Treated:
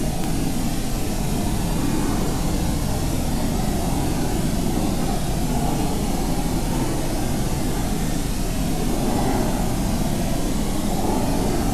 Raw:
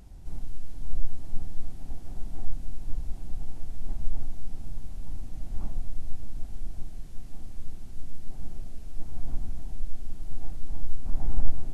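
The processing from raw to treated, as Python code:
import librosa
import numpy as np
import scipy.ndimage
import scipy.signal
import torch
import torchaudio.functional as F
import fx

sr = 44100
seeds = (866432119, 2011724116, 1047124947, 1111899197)

y = fx.paulstretch(x, sr, seeds[0], factor=7.3, window_s=0.05, from_s=2.64)
y = y + 10.0 ** (-7.5 / 20.0) * np.pad(y, (int(239 * sr / 1000.0), 0))[:len(y)]
y = fx.spectral_comp(y, sr, ratio=10.0)
y = y * librosa.db_to_amplitude(-4.0)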